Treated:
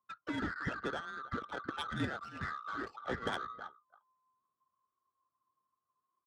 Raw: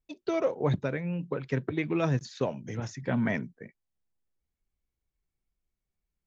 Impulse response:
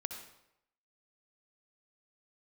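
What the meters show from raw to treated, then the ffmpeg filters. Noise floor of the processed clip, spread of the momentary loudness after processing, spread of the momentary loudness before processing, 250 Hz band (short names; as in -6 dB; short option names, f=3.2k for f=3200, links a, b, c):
under -85 dBFS, 4 LU, 8 LU, -11.0 dB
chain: -filter_complex "[0:a]afftfilt=real='real(if(lt(b,960),b+48*(1-2*mod(floor(b/48),2)),b),0)':imag='imag(if(lt(b,960),b+48*(1-2*mod(floor(b/48),2)),b),0)':win_size=2048:overlap=0.75,aphaser=in_gain=1:out_gain=1:delay=3:decay=0.27:speed=0.89:type=triangular,highpass=100,highshelf=f=3.6k:g=4,aecho=1:1:318:0.112,afftfilt=real='re*lt(hypot(re,im),0.158)':imag='im*lt(hypot(re,im),0.158)':win_size=1024:overlap=0.75,adynamicequalizer=threshold=0.00282:dfrequency=830:dqfactor=0.83:tfrequency=830:tqfactor=0.83:attack=5:release=100:ratio=0.375:range=3.5:mode=cutabove:tftype=bell,acrossover=split=300|590|3200[a][b][c][d];[c]asoftclip=type=tanh:threshold=-40dB[e];[a][b][e][d]amix=inputs=4:normalize=0,lowpass=5.8k,adynamicsmooth=sensitivity=5:basefreq=680,volume=8dB"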